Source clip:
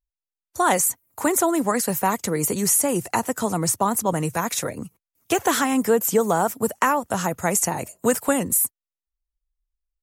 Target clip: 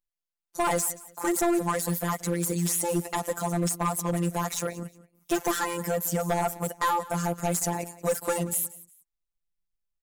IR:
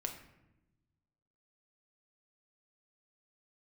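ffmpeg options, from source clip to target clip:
-af "afftfilt=real='hypot(re,im)*cos(PI*b)':imag='0':win_size=1024:overlap=0.75,asoftclip=type=hard:threshold=-19.5dB,aecho=1:1:180|360:0.112|0.0303"

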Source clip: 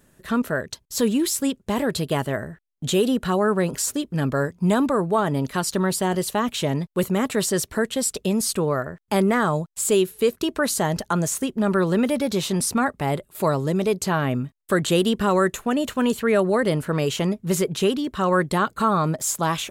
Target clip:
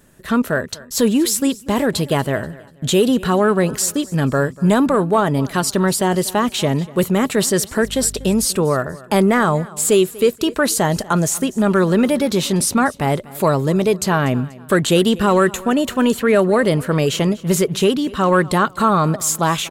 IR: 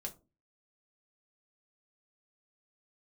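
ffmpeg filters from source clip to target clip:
-filter_complex "[0:a]asettb=1/sr,asplit=3[a][b][c];[a]atrim=end=7.834[d];[b]atrim=start=7.83:end=8.45,asetpts=PTS-STARTPTS,afade=t=in:d=0.004:c=qsin,afade=t=out:st=0.616:d=0.004:c=qsin,aeval=exprs='val(0)+0.0126*(sin(2*PI*50*n/s)+sin(2*PI*2*50*n/s)/2+sin(2*PI*3*50*n/s)/3+sin(2*PI*4*50*n/s)/4+sin(2*PI*5*50*n/s)/5)':c=same[e];[c]atrim=start=8.446[f];[d][e]acrossfade=d=0.004:c1=hsin:c2=qsin[g];[g][f]acrossfade=d=0.004:c1=qsin:c2=hsin,acontrast=44,aecho=1:1:242|484|726:0.0944|0.034|0.0122"

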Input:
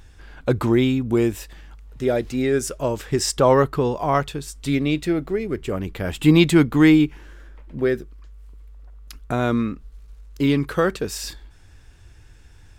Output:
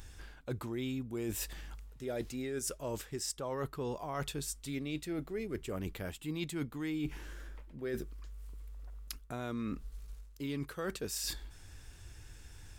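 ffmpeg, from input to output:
-af "highshelf=f=5.2k:g=10,areverse,acompressor=threshold=-31dB:ratio=10,areverse,volume=-4dB"

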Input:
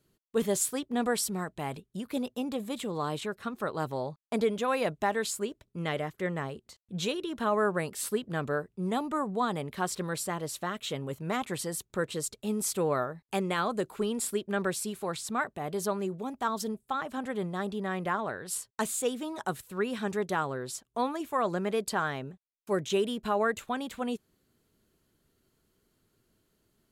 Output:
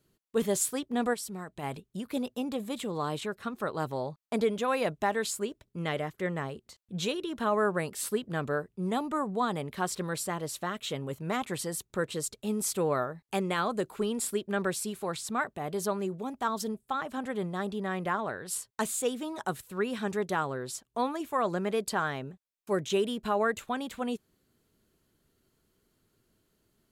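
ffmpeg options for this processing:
-filter_complex "[0:a]asplit=3[a][b][c];[a]afade=t=out:st=1.13:d=0.02[d];[b]acompressor=threshold=-37dB:ratio=3,afade=t=in:st=1.13:d=0.02,afade=t=out:st=1.62:d=0.02[e];[c]afade=t=in:st=1.62:d=0.02[f];[d][e][f]amix=inputs=3:normalize=0"

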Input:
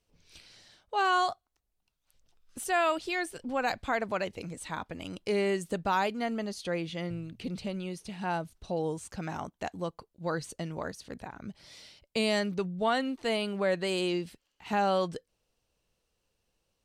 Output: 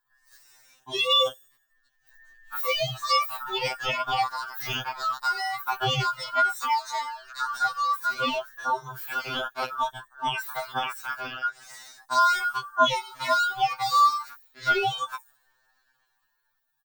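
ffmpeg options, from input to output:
-filter_complex "[0:a]afftfilt=real='real(if(between(b,1,1008),(2*floor((b-1)/48)+1)*48-b,b),0)':imag='imag(if(between(b,1,1008),(2*floor((b-1)/48)+1)*48-b,b),0)*if(between(b,1,1008),-1,1)':win_size=2048:overlap=0.75,acrossover=split=4300[a][b];[a]dynaudnorm=f=220:g=9:m=15.5dB[c];[b]aecho=1:1:74|148|222|296|370|444|518:0.708|0.361|0.184|0.0939|0.0479|0.0244|0.0125[d];[c][d]amix=inputs=2:normalize=0,aexciter=amount=11.6:drive=7:freq=9.4k,equalizer=f=200:w=0.95:g=-6.5,acompressor=threshold=-17dB:ratio=8,asetrate=76340,aresample=44100,atempo=0.577676,equalizer=f=1.2k:w=0.65:g=2.5,afftfilt=real='re*2.45*eq(mod(b,6),0)':imag='im*2.45*eq(mod(b,6),0)':win_size=2048:overlap=0.75,volume=-3dB"

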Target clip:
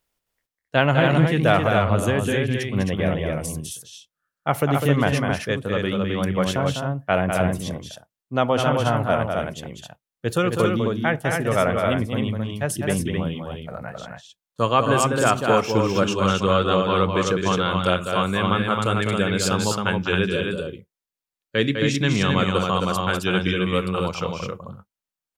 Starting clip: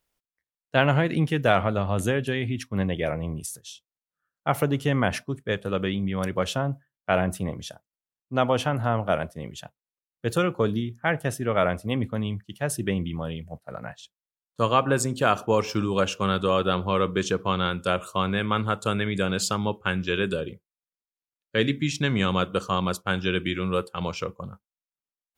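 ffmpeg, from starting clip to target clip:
-filter_complex "[0:a]asettb=1/sr,asplit=3[a][b][c];[a]atrim=end=16.134[d];[b]atrim=start=16.13:end=16.85,asetpts=PTS-STARTPTS,afade=t=in:d=0.004:c=qsin,afade=t=out:st=0.716:d=0.004:c=qsin,lowpass=f=8.5k:w=0.5412,lowpass=f=8.5k:w=1.3066[e];[c]atrim=start=16.846[f];[d][e]acrossfade=d=0.004:c1=hsin:c2=qsin[g];[g][f]acrossfade=d=0.004:c1=qsin:c2=hsin,aecho=1:1:201.2|265.3:0.501|0.631,volume=2dB"

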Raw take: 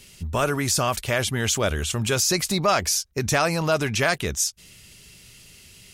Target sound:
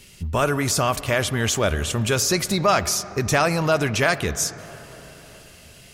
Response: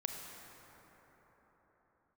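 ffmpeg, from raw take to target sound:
-filter_complex "[0:a]asplit=2[a][b];[1:a]atrim=start_sample=2205,lowpass=3.6k[c];[b][c]afir=irnorm=-1:irlink=0,volume=-9dB[d];[a][d]amix=inputs=2:normalize=0"

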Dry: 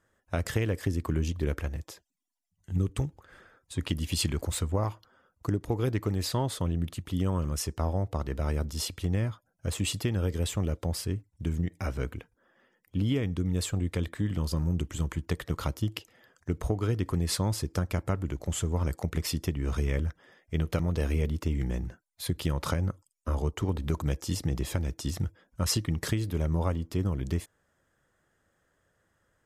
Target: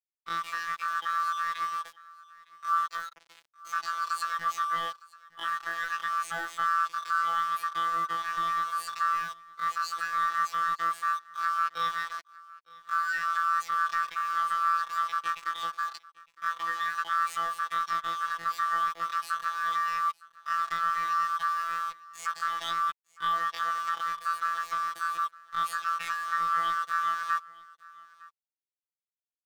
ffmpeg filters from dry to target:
-filter_complex "[0:a]afftfilt=real='real(if(lt(b,1008),b+24*(1-2*mod(floor(b/24),2)),b),0)':imag='imag(if(lt(b,1008),b+24*(1-2*mod(floor(b/24),2)),b),0)':win_size=2048:overlap=0.75,lowpass=7.2k,acrossover=split=5400[a][b];[a]dynaudnorm=f=260:g=17:m=5.5dB[c];[c][b]amix=inputs=2:normalize=0,alimiter=limit=-17.5dB:level=0:latency=1:release=384,asplit=2[d][e];[e]acompressor=threshold=-37dB:ratio=16,volume=-2.5dB[f];[d][f]amix=inputs=2:normalize=0,acrusher=bits=5:mix=0:aa=0.000001,afftfilt=real='hypot(re,im)*cos(PI*b)':imag='0':win_size=2048:overlap=0.75,asetrate=85689,aresample=44100,atempo=0.514651,acrossover=split=490 5300:gain=0.251 1 0.251[g][h][i];[g][h][i]amix=inputs=3:normalize=0,aecho=1:1:910:0.0794"

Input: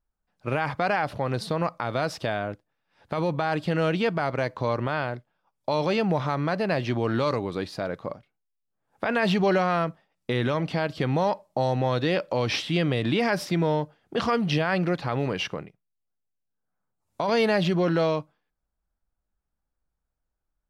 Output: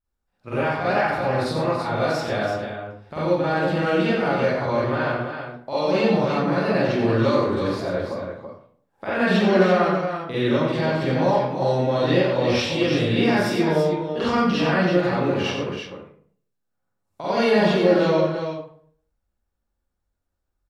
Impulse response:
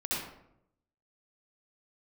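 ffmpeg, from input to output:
-filter_complex "[0:a]aecho=1:1:90|332:0.447|0.447[a];[1:a]atrim=start_sample=2205,asetrate=66150,aresample=44100[b];[a][b]afir=irnorm=-1:irlink=0"

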